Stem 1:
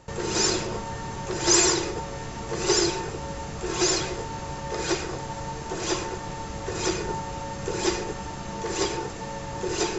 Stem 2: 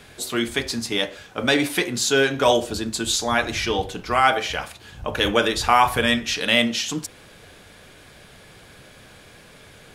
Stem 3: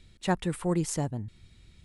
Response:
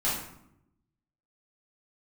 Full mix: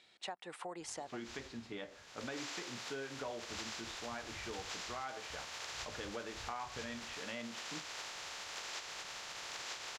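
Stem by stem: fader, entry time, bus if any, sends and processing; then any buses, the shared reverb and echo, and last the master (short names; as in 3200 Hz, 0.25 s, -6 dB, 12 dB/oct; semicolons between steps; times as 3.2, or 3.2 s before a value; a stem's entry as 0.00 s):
-7.5 dB, 0.90 s, bus A, no send, spectral contrast lowered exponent 0.16; auto duck -22 dB, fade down 1.75 s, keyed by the third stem
-17.0 dB, 0.80 s, no bus, no send, LPF 2100 Hz 12 dB/oct
+0.5 dB, 0.00 s, bus A, no send, bell 750 Hz +7 dB 0.44 oct
bus A: 0.0 dB, BPF 600–5800 Hz; compressor 2:1, threshold -43 dBFS, peak gain reduction 12 dB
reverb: off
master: compressor 4:1, threshold -41 dBFS, peak gain reduction 11 dB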